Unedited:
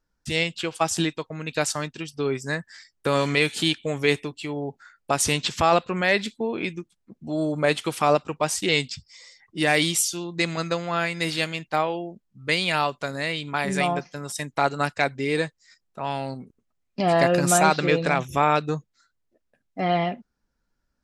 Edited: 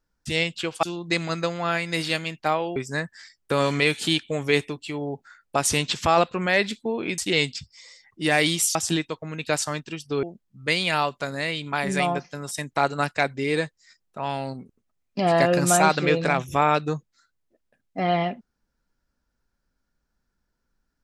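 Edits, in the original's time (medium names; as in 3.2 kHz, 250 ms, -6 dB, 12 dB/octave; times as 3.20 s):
0.83–2.31 s: swap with 10.11–12.04 s
6.73–8.54 s: delete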